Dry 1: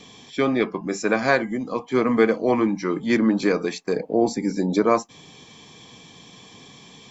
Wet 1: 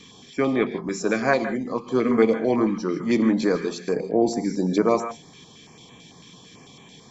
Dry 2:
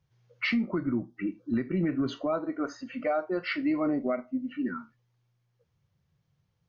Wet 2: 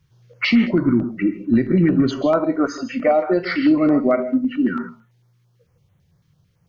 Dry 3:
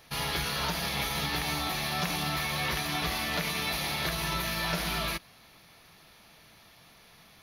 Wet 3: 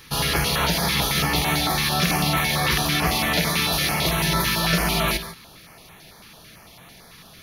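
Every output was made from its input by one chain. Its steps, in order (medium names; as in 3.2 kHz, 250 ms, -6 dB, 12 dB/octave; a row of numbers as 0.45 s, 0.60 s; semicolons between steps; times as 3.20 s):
gated-style reverb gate 180 ms rising, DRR 10 dB; step-sequenced notch 9 Hz 670–4900 Hz; peak normalisation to -6 dBFS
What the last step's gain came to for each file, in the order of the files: -0.5 dB, +12.5 dB, +11.0 dB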